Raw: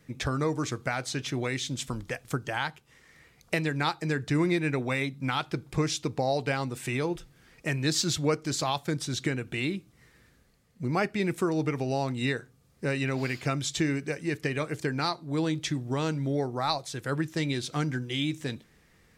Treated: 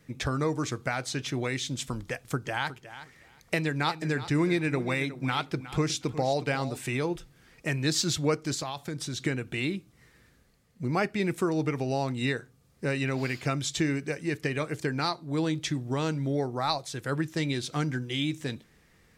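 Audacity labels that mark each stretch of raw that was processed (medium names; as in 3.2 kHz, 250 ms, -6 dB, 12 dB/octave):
2.090000	6.830000	feedback delay 363 ms, feedback 16%, level -14 dB
8.540000	9.200000	compression 5:1, threshold -30 dBFS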